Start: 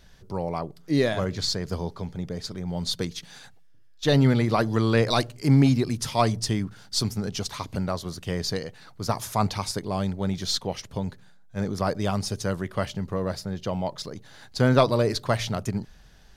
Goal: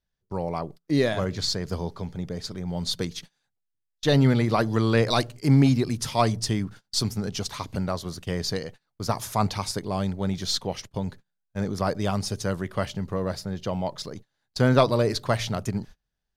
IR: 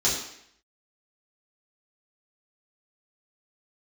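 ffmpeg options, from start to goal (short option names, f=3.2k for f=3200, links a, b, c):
-af "agate=range=-30dB:threshold=-40dB:ratio=16:detection=peak"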